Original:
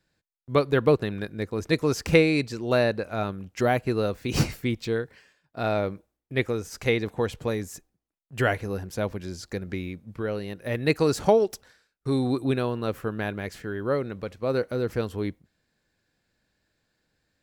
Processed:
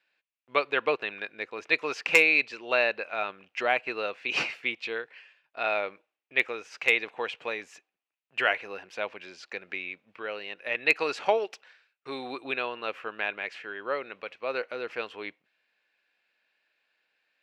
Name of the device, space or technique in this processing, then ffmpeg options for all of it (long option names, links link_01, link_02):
megaphone: -af "highpass=680,lowpass=3500,equalizer=frequency=2600:width_type=o:width=0.57:gain=12,asoftclip=type=hard:threshold=-9.5dB"